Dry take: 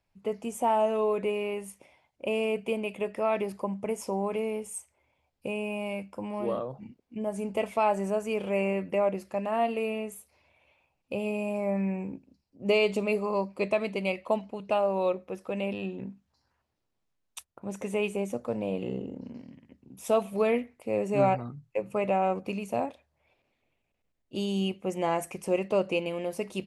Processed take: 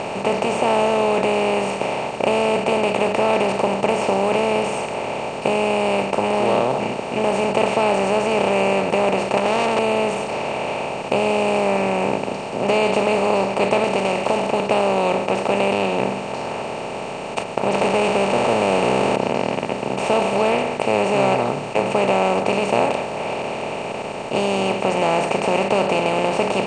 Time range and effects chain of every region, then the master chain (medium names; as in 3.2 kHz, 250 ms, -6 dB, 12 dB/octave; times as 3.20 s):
9.37–9.79 s: CVSD coder 64 kbps + bass shelf 350 Hz +4 dB + transformer saturation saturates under 3.2 kHz
13.84–14.53 s: block-companded coder 5-bit + compression 2:1, threshold -38 dBFS
17.73–19.16 s: jump at every zero crossing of -34 dBFS + careless resampling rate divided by 4×, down filtered, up hold
whole clip: spectral levelling over time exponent 0.2; steep low-pass 8 kHz 36 dB/octave